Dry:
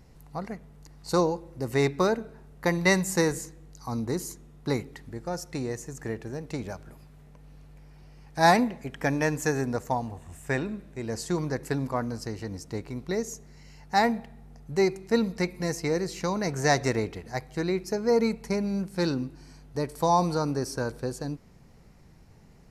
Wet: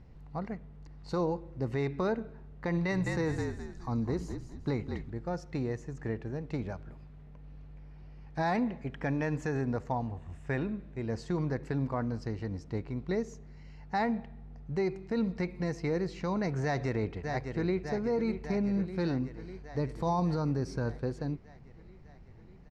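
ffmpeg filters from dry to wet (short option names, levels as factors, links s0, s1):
-filter_complex "[0:a]asettb=1/sr,asplit=3[s0][s1][s2];[s0]atrim=end=2.704[s3];[s1]atrim=start=2.7:end=5.1,asetpts=PTS-STARTPTS,afade=t=in:d=0.004:c=qsin,afade=t=out:st=2.396:d=0.004:c=qsin,asplit=5[s4][s5][s6][s7][s8];[s5]adelay=208,afreqshift=-50,volume=0.355[s9];[s6]adelay=416,afreqshift=-100,volume=0.12[s10];[s7]adelay=624,afreqshift=-150,volume=0.0412[s11];[s8]adelay=832,afreqshift=-200,volume=0.014[s12];[s4][s9][s10][s11][s12]amix=inputs=5:normalize=0,atrim=end_sample=105840[s13];[s2]atrim=start=5.096[s14];[s3][s13]acrossfade=d=0.004:c1=hsin:c2=qsin[s15];[s15][s14]acrossfade=d=0.004:c1=qsin:c2=hsin,asplit=2[s16][s17];[s17]afade=t=in:st=16.63:d=0.01,afade=t=out:st=17.82:d=0.01,aecho=0:1:600|1200|1800|2400|3000|3600|4200|4800|5400|6000:0.281838|0.197287|0.138101|0.0966705|0.0676694|0.0473686|0.033158|0.0232106|0.0162474|0.0113732[s18];[s16][s18]amix=inputs=2:normalize=0,asettb=1/sr,asplit=3[s19][s20][s21];[s19]atrim=end=19.804[s22];[s20]atrim=start=19.8:end=20.97,asetpts=PTS-STARTPTS,afade=t=in:d=0.004:c=qsin,afade=t=out:st=1.166:d=0.004:c=qsin,bass=f=250:g=4,treble=f=4000:g=3[s23];[s21]atrim=start=20.966[s24];[s22][s23]acrossfade=d=0.004:c1=hsin:c2=qsin[s25];[s25][s24]acrossfade=d=0.004:c1=qsin:c2=hsin,lowpass=3400,lowshelf=f=200:g=6.5,alimiter=limit=0.126:level=0:latency=1:release=59,volume=0.631"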